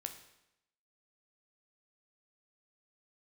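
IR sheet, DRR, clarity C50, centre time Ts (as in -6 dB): 5.5 dB, 9.5 dB, 14 ms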